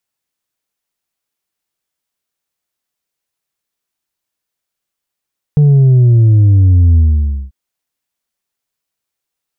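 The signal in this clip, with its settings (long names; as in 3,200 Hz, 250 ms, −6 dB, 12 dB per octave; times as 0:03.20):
bass drop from 150 Hz, over 1.94 s, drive 3 dB, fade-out 0.54 s, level −5 dB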